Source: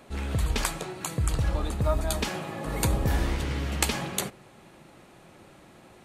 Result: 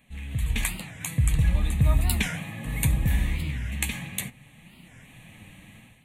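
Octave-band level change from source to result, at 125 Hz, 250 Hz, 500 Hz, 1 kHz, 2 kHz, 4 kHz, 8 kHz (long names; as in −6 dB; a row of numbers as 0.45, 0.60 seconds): +4.0, 0.0, −10.5, −7.5, +2.0, −2.0, −0.5 decibels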